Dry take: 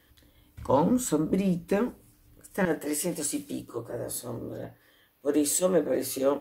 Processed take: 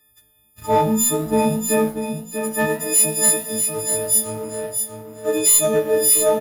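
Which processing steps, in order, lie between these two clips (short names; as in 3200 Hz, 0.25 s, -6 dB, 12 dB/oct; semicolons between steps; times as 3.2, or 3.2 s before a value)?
frequency quantiser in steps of 6 st; sample leveller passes 2; doubler 18 ms -7 dB; flange 0.58 Hz, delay 8.1 ms, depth 8.5 ms, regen -89%; on a send: feedback echo 0.641 s, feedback 22%, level -6.5 dB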